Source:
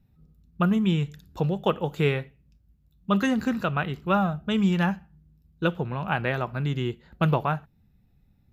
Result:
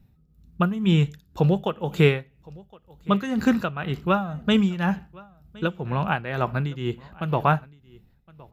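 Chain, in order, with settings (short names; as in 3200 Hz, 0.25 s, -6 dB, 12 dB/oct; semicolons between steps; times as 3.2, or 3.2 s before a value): tremolo 2 Hz, depth 79%; echo 1.065 s -23.5 dB; gain +6.5 dB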